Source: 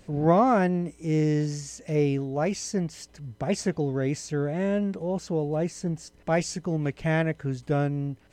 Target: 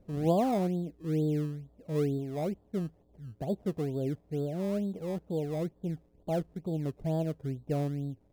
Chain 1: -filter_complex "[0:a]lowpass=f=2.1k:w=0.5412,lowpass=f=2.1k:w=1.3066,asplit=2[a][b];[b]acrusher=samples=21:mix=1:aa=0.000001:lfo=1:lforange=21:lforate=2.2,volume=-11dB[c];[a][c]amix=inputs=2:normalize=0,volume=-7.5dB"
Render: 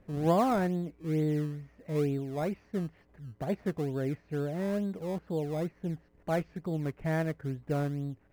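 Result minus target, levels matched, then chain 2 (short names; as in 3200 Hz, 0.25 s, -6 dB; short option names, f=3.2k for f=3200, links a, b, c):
2000 Hz band +9.0 dB
-filter_complex "[0:a]lowpass=f=790:w=0.5412,lowpass=f=790:w=1.3066,asplit=2[a][b];[b]acrusher=samples=21:mix=1:aa=0.000001:lfo=1:lforange=21:lforate=2.2,volume=-11dB[c];[a][c]amix=inputs=2:normalize=0,volume=-7.5dB"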